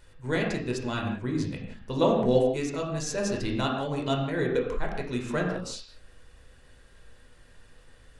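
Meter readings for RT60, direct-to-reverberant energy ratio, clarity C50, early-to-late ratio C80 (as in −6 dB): non-exponential decay, −0.5 dB, 3.5 dB, 5.0 dB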